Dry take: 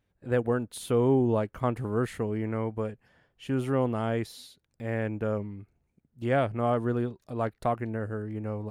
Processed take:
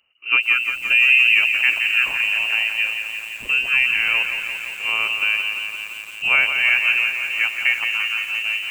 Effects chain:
voice inversion scrambler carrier 2,900 Hz
feedback echo at a low word length 172 ms, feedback 80%, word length 8 bits, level −7.5 dB
level +8 dB

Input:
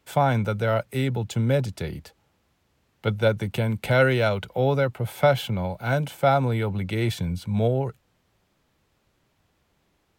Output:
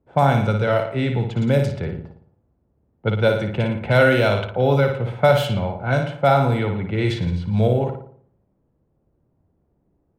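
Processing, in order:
flutter between parallel walls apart 9.8 metres, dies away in 0.61 s
low-pass that shuts in the quiet parts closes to 490 Hz, open at −16 dBFS
level +3 dB

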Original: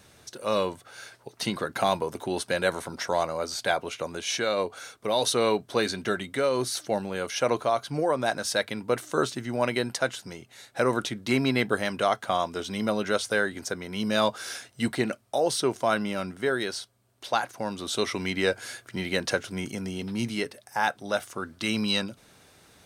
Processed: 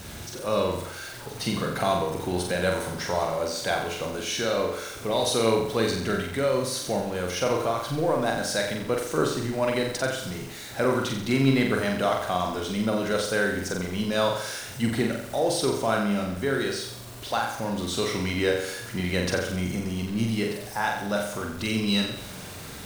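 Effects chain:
converter with a step at zero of −35.5 dBFS
low-shelf EQ 220 Hz +8 dB
on a send: flutter between parallel walls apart 7.6 metres, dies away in 0.71 s
on the sum: bit reduction 8 bits
level −3.5 dB

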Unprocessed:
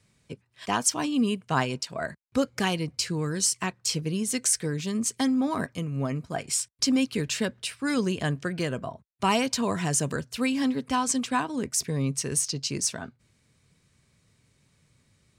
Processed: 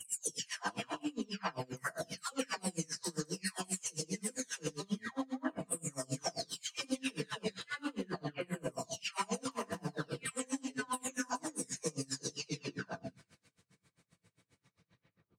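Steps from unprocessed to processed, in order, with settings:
every frequency bin delayed by itself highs early, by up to 815 ms
high-pass filter 650 Hz 6 dB per octave
spectral tilt −2.5 dB per octave
downward compressor 3 to 1, threshold −39 dBFS, peak gain reduction 11.5 dB
transient designer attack +5 dB, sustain +9 dB
delay with a high-pass on its return 210 ms, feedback 37%, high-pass 3,700 Hz, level −5.5 dB
reverb whose tail is shaped and stops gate 120 ms rising, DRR 2.5 dB
tremolo with a sine in dB 7.5 Hz, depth 30 dB
level +3 dB

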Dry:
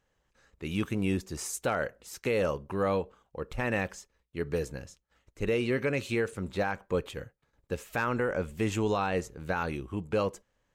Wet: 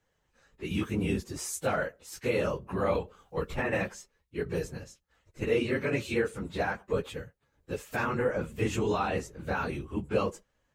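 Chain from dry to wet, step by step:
random phases in long frames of 50 ms
0:02.95–0:03.73: multiband upward and downward compressor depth 100%

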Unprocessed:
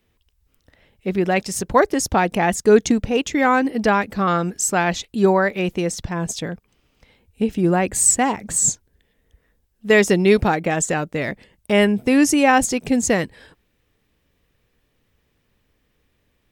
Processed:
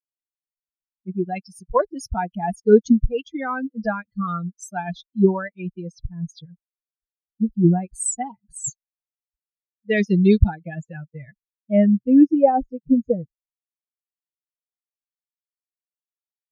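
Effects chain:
spectral dynamics exaggerated over time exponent 3
spectral tilt −3.5 dB per octave
low-pass filter sweep 9,500 Hz → 490 Hz, 0:09.40–0:12.73
level −1.5 dB

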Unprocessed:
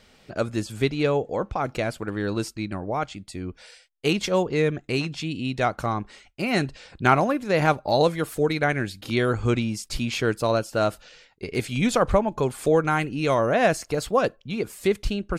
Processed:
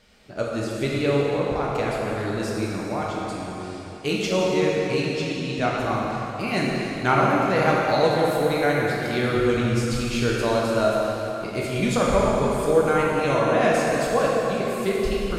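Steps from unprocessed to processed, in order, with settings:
dense smooth reverb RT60 3.5 s, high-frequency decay 0.8×, DRR −4.5 dB
level −4 dB

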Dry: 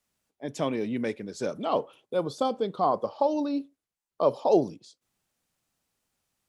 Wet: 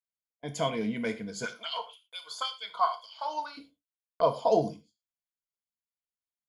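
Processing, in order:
parametric band 340 Hz −10 dB 1 octave
noise gate −47 dBFS, range −28 dB
EQ curve with evenly spaced ripples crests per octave 1.8, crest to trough 11 dB
0:01.44–0:03.57: auto-filter high-pass sine 6.1 Hz → 1.1 Hz 880–3,800 Hz
reverb whose tail is shaped and stops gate 140 ms falling, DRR 7 dB

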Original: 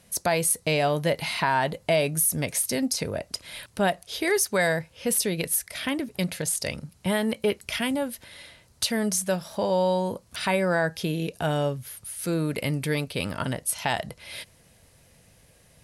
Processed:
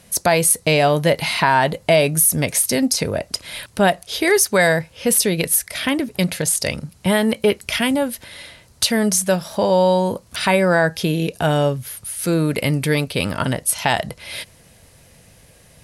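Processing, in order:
0:09.88–0:10.53: surface crackle 17 per second → 75 per second −48 dBFS
level +8 dB

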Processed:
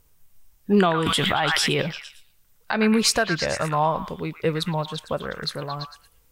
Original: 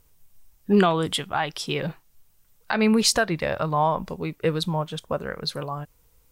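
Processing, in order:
on a send: echo through a band-pass that steps 113 ms, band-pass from 1,600 Hz, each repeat 0.7 octaves, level −3 dB
0:01.06–0:01.82: on the sum: envelope flattener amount 100%

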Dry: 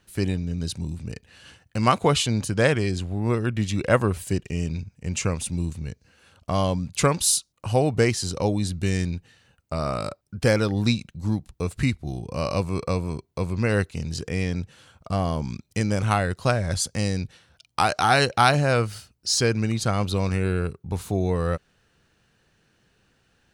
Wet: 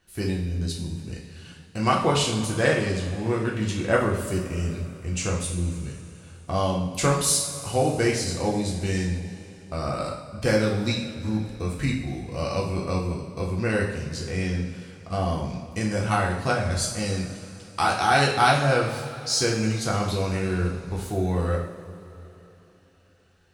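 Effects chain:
coupled-rooms reverb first 0.59 s, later 3.5 s, from −16 dB, DRR −3 dB
level −5 dB

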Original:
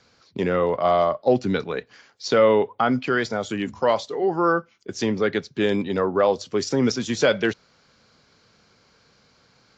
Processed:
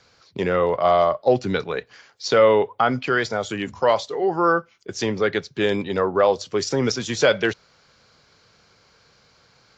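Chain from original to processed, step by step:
parametric band 240 Hz −6.5 dB 0.92 octaves
level +2.5 dB

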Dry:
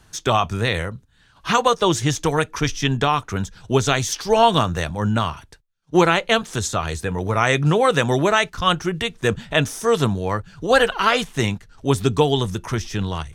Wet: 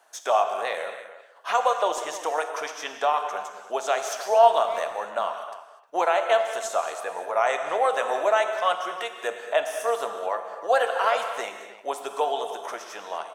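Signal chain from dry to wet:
parametric band 4,200 Hz −6 dB 1.4 octaves
in parallel at +1 dB: downward compressor, threshold −26 dBFS, peak gain reduction 15 dB
on the sum: bit reduction 12 bits
four-pole ladder high-pass 570 Hz, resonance 60%
far-end echo of a speakerphone 310 ms, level −14 dB
reverb whose tail is shaped and stops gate 270 ms flat, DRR 6 dB

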